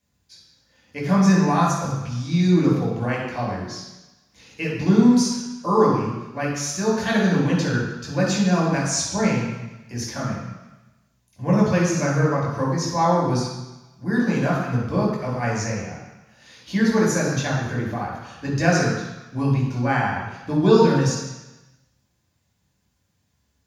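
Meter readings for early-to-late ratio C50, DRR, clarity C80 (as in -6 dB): 1.0 dB, -4.5 dB, 4.0 dB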